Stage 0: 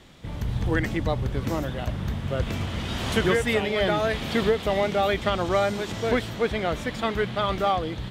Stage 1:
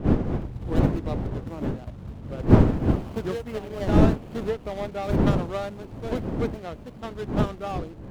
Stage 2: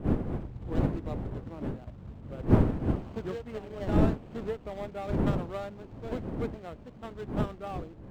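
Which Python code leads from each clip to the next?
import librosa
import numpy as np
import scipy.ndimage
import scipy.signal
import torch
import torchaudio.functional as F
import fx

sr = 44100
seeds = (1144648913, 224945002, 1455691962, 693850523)

y1 = scipy.signal.medfilt(x, 25)
y1 = fx.dmg_wind(y1, sr, seeds[0], corner_hz=270.0, level_db=-22.0)
y1 = fx.upward_expand(y1, sr, threshold_db=-30.0, expansion=1.5)
y2 = np.interp(np.arange(len(y1)), np.arange(len(y1))[::4], y1[::4])
y2 = y2 * librosa.db_to_amplitude(-6.5)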